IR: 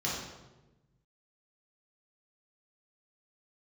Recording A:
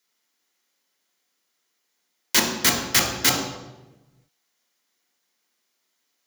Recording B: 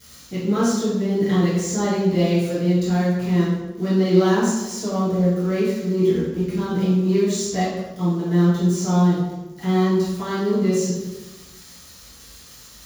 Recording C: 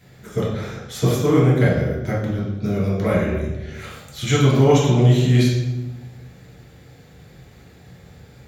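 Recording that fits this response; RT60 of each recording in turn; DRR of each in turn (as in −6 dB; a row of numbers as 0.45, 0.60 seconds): C; 1.1, 1.1, 1.1 seconds; 1.0, −11.5, −6.5 decibels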